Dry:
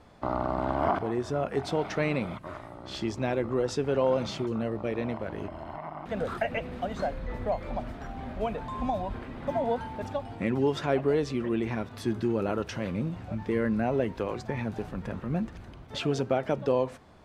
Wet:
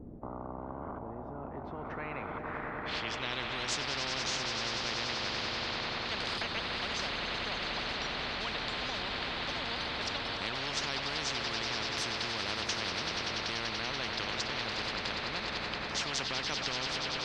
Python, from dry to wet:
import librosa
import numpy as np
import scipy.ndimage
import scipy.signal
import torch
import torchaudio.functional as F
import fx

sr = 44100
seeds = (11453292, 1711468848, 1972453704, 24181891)

y = fx.filter_sweep_lowpass(x, sr, from_hz=250.0, to_hz=4300.0, start_s=1.36, end_s=3.52, q=4.0)
y = fx.echo_swell(y, sr, ms=96, loudest=5, wet_db=-15.0)
y = fx.spectral_comp(y, sr, ratio=10.0)
y = y * librosa.db_to_amplitude(-8.0)